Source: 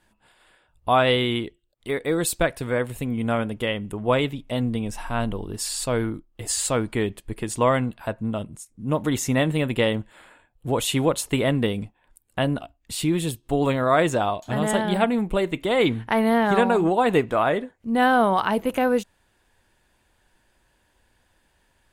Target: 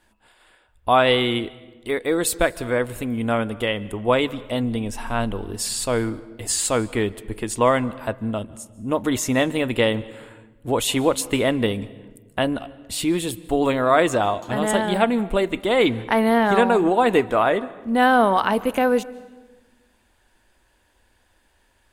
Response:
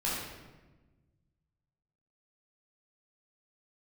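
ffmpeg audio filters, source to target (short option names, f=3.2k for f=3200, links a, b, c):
-filter_complex "[0:a]equalizer=f=150:w=3.8:g=-12.5,asplit=2[a][b];[1:a]atrim=start_sample=2205,adelay=139[c];[b][c]afir=irnorm=-1:irlink=0,volume=-26.5dB[d];[a][d]amix=inputs=2:normalize=0,volume=2.5dB"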